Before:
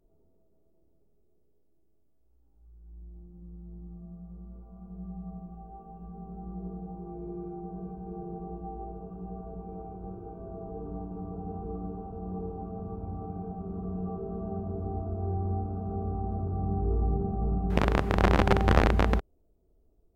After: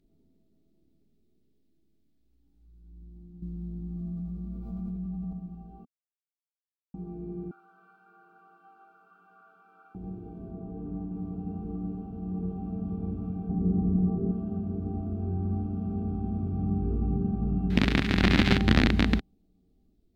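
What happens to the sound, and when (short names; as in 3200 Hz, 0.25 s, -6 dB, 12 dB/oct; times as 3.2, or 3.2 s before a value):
3.42–5.33 fast leveller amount 100%
5.85–6.94 mute
7.51–9.95 resonant high-pass 1400 Hz, resonance Q 13
10.51–11.15 LPF 3000 Hz
11.82–12.74 echo throw 0.6 s, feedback 70%, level -4 dB
13.49–14.32 tilt shelf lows +7.5 dB, about 1200 Hz
15.05–18.58 thin delay 70 ms, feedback 84%, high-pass 1400 Hz, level -6 dB
whole clip: ten-band EQ 125 Hz +3 dB, 250 Hz +12 dB, 500 Hz -7 dB, 1000 Hz -6 dB, 2000 Hz +6 dB, 4000 Hz +12 dB; gain -3 dB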